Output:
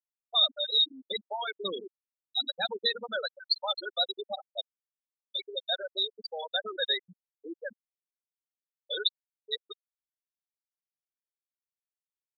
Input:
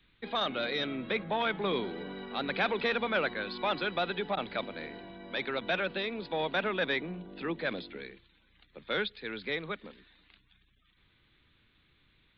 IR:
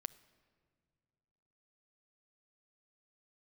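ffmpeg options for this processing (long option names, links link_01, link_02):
-filter_complex "[0:a]aexciter=amount=11:drive=3:freq=4200[link_01];[1:a]atrim=start_sample=2205,asetrate=57330,aresample=44100[link_02];[link_01][link_02]afir=irnorm=-1:irlink=0,afftfilt=real='re*gte(hypot(re,im),0.0794)':imag='im*gte(hypot(re,im),0.0794)':win_size=1024:overlap=0.75,bass=frequency=250:gain=-11,treble=frequency=4000:gain=14,volume=4.5dB"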